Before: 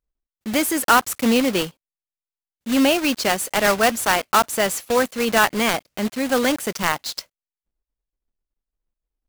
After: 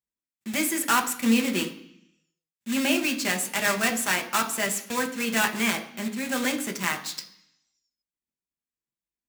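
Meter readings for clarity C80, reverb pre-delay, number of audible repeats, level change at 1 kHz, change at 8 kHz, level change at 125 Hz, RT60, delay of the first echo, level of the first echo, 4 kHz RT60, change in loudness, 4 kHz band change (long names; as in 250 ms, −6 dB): 15.5 dB, 3 ms, no echo audible, −8.5 dB, −2.5 dB, −4.5 dB, 0.65 s, no echo audible, no echo audible, 1.1 s, −5.5 dB, −5.0 dB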